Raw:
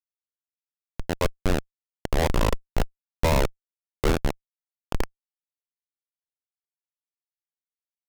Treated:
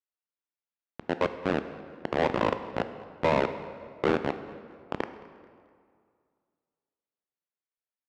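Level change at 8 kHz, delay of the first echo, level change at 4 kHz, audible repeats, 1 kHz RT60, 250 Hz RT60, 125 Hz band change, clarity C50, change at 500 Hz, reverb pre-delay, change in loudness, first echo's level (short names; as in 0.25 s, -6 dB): under -15 dB, 0.218 s, -6.5 dB, 2, 2.2 s, 2.2 s, -9.5 dB, 11.0 dB, +0.5 dB, 11 ms, -2.5 dB, -22.0 dB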